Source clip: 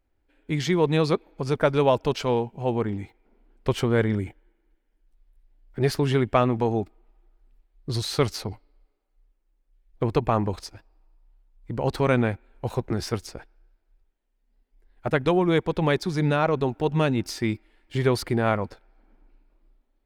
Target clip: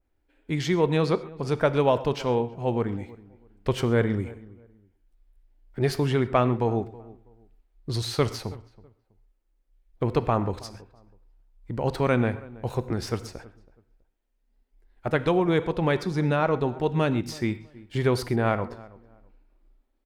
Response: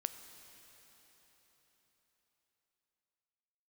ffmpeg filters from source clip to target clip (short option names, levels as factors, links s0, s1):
-filter_complex "[0:a]asplit=2[s0][s1];[s1]adelay=325,lowpass=f=1200:p=1,volume=0.1,asplit=2[s2][s3];[s3]adelay=325,lowpass=f=1200:p=1,volume=0.26[s4];[s0][s2][s4]amix=inputs=3:normalize=0[s5];[1:a]atrim=start_sample=2205,atrim=end_sample=6174[s6];[s5][s6]afir=irnorm=-1:irlink=0,adynamicequalizer=threshold=0.00794:dfrequency=2700:dqfactor=0.7:tfrequency=2700:tqfactor=0.7:attack=5:release=100:ratio=0.375:range=2:mode=cutabove:tftype=highshelf"